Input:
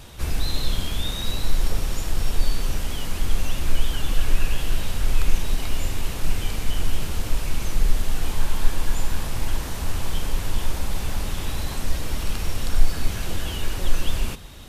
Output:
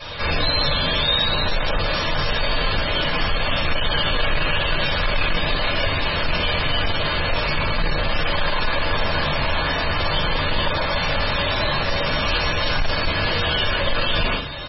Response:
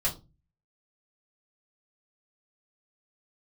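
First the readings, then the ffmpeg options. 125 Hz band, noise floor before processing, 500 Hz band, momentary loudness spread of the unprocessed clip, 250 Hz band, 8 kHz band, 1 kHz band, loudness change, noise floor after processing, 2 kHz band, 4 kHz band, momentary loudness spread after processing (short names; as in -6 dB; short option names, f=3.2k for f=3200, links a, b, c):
+2.5 dB, -30 dBFS, +13.0 dB, 3 LU, +5.5 dB, under -15 dB, +13.5 dB, +8.0 dB, -23 dBFS, +15.0 dB, +12.5 dB, 3 LU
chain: -filter_complex "[0:a]highpass=f=680:p=1,asplit=2[a][b];[b]adelay=23,volume=-10.5dB[c];[a][c]amix=inputs=2:normalize=0,acrossover=split=6500[d][e];[d]acontrast=42[f];[e]acrusher=samples=17:mix=1:aa=0.000001:lfo=1:lforange=27.2:lforate=0.79[g];[f][g]amix=inputs=2:normalize=0[h];[1:a]atrim=start_sample=2205,asetrate=39690,aresample=44100[i];[h][i]afir=irnorm=-1:irlink=0,asoftclip=type=tanh:threshold=-17.5dB,aecho=1:1:65|130:0.211|0.0317,volume=3.5dB" -ar 24000 -c:a libmp3lame -b:a 16k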